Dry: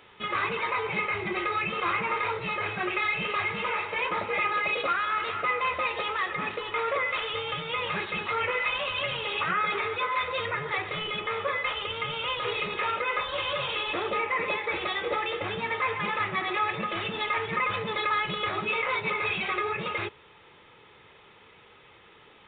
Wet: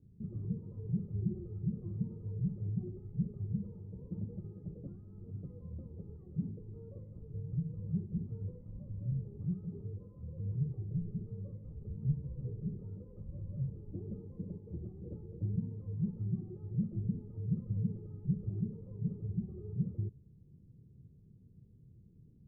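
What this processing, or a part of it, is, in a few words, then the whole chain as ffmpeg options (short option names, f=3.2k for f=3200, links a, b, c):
the neighbour's flat through the wall: -filter_complex "[0:a]asettb=1/sr,asplit=3[a][b][c];[a]atrim=end=11.804[d];[b]atrim=start=11.8:end=12.5,asetpts=PTS-STARTPTS,afade=t=in:d=0.004:c=qsin,afade=t=out:st=0.696:d=0.004:c=qsin,asplit=2[e][f];[f]adelay=14,volume=-3dB[g];[e][g]amix=inputs=2:normalize=0,atrim=end_sample=30870[h];[c]atrim=start=12.496[i];[d][h]acrossfade=d=0.004:c1=hsin:c2=qsin[j];[j][i]acrossfade=d=0.004:c1=qsin:c2=hsin,lowpass=f=200:w=0.5412,lowpass=f=200:w=1.3066,equalizer=f=130:t=o:w=0.42:g=4,volume=7dB"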